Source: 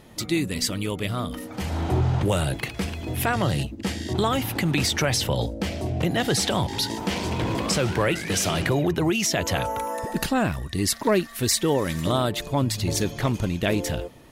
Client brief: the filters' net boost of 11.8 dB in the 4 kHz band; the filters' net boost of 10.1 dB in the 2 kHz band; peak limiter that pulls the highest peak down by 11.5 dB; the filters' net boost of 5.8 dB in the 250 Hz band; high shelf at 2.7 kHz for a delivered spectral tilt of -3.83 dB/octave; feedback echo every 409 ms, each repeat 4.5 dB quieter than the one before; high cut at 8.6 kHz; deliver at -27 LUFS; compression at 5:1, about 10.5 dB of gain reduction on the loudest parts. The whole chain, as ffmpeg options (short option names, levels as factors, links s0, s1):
-af "lowpass=8600,equalizer=f=250:t=o:g=7.5,equalizer=f=2000:t=o:g=7,highshelf=f=2700:g=9,equalizer=f=4000:t=o:g=5.5,acompressor=threshold=0.0794:ratio=5,alimiter=limit=0.119:level=0:latency=1,aecho=1:1:409|818|1227|1636|2045|2454|2863|3272|3681:0.596|0.357|0.214|0.129|0.0772|0.0463|0.0278|0.0167|0.01,volume=0.891"